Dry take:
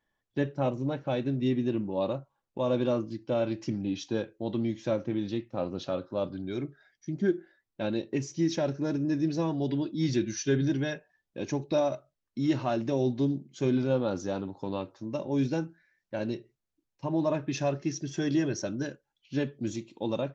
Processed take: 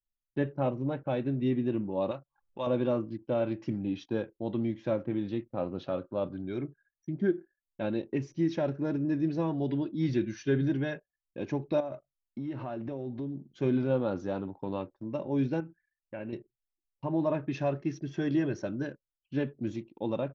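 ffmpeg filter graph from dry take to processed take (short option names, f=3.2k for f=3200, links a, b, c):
-filter_complex "[0:a]asettb=1/sr,asplit=3[a][b][c];[a]atrim=end=2.114[d];[b]atrim=start=2.11:end=2.67,asetpts=PTS-STARTPTS,afade=t=in:d=0.004:c=qsin,afade=t=out:st=0.556:d=0.004:c=qsin,acompressor=mode=upward:threshold=-41dB:ratio=2.5:attack=3.2:release=140:knee=2.83:detection=peak,tiltshelf=f=970:g=-8.5[e];[c]atrim=start=2.666[f];[d][e]acrossfade=d=0.004:c1=hsin:c2=qsin[g];[g][f]acrossfade=d=0.004:c1=qsin:c2=hsin,asettb=1/sr,asplit=3[h][i][j];[h]atrim=end=11.804[k];[i]atrim=start=11.8:end=13.48,asetpts=PTS-STARTPTS,afade=t=in:d=0.004:c=qsin,afade=t=out:st=1.676:d=0.004:c=qsin,highshelf=f=4.7k:g=-9,acompressor=threshold=-32dB:ratio=5:attack=3.2:release=140:knee=1:detection=peak[l];[j]atrim=start=13.476[m];[k][l]acrossfade=d=0.004:c1=hsin:c2=qsin[n];[n][m]acrossfade=d=0.004:c1=qsin:c2=hsin,asettb=1/sr,asplit=3[o][p][q];[o]atrim=end=15.604[r];[p]atrim=start=15.6:end=16.33,asetpts=PTS-STARTPTS,afade=t=in:d=0.004:c=qsin,afade=t=out:st=0.726:d=0.004:c=qsin,highshelf=f=3.4k:t=q:w=3:g=-10,acompressor=threshold=-38dB:ratio=2:attack=3.2:release=140:knee=1:detection=peak[s];[q]atrim=start=16.326[t];[r][s]acrossfade=d=0.004:c1=hsin:c2=qsin[u];[u][t]acrossfade=d=0.004:c1=qsin:c2=hsin,anlmdn=0.00158,lowpass=2.7k,volume=-1dB"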